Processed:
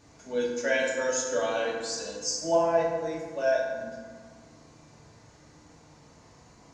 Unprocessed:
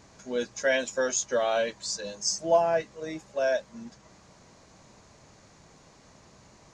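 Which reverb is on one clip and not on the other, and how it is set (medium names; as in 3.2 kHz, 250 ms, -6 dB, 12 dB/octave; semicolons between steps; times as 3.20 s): FDN reverb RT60 1.6 s, low-frequency decay 1.35×, high-frequency decay 0.5×, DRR -4 dB; trim -5.5 dB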